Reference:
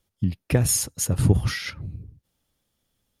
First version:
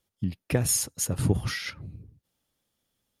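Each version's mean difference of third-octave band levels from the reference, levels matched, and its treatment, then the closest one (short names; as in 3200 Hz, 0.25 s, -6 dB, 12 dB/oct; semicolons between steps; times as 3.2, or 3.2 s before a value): 1.5 dB: low shelf 99 Hz -9 dB; gain -2.5 dB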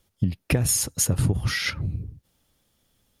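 3.5 dB: compressor 8:1, threshold -25 dBFS, peak gain reduction 14 dB; gain +6.5 dB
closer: first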